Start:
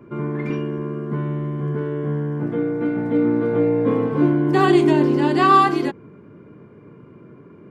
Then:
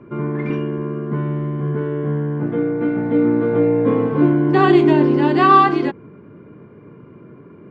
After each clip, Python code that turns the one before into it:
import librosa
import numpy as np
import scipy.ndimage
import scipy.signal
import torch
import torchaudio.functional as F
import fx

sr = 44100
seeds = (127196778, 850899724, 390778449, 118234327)

y = scipy.signal.sosfilt(scipy.signal.butter(2, 3600.0, 'lowpass', fs=sr, output='sos'), x)
y = y * librosa.db_to_amplitude(2.5)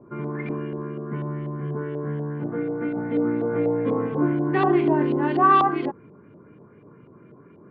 y = fx.filter_lfo_lowpass(x, sr, shape='saw_up', hz=4.1, low_hz=680.0, high_hz=3800.0, q=2.1)
y = y * librosa.db_to_amplitude(-8.0)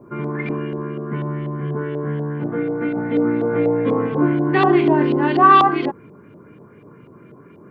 y = fx.high_shelf(x, sr, hz=3200.0, db=11.0)
y = y * librosa.db_to_amplitude(4.5)